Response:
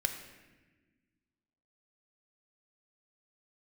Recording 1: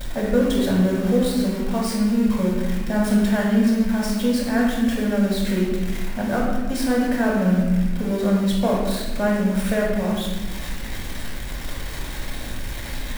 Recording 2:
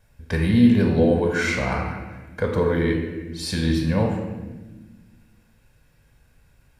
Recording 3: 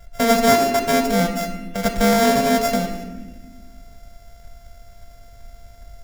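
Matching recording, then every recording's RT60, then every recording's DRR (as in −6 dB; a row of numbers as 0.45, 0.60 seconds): 3; 1.3, 1.3, 1.3 seconds; −4.5, 1.0, 5.5 decibels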